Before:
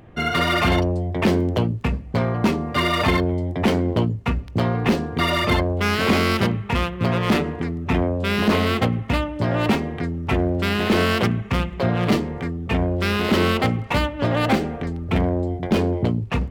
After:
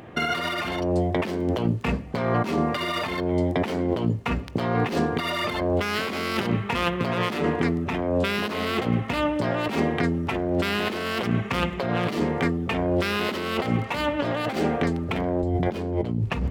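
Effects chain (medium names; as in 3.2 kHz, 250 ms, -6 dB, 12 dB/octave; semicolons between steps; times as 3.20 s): high-pass 260 Hz 6 dB/octave, from 15.43 s 48 Hz; compressor with a negative ratio -28 dBFS, ratio -1; trim +3 dB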